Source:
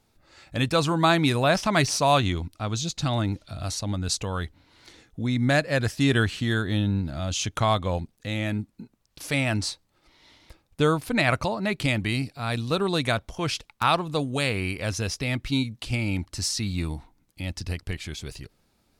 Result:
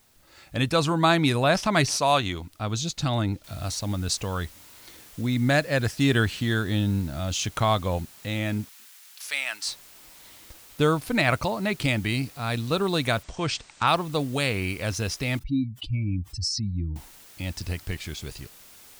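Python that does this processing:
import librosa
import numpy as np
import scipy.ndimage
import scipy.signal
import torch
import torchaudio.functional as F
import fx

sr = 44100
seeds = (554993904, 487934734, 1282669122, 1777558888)

y = fx.low_shelf(x, sr, hz=280.0, db=-7.5, at=(1.97, 2.51))
y = fx.noise_floor_step(y, sr, seeds[0], at_s=3.44, before_db=-63, after_db=-50, tilt_db=0.0)
y = fx.highpass(y, sr, hz=1300.0, slope=12, at=(8.69, 9.67))
y = fx.brickwall_lowpass(y, sr, high_hz=8900.0, at=(13.22, 13.86), fade=0.02)
y = fx.spec_expand(y, sr, power=2.3, at=(15.39, 16.96))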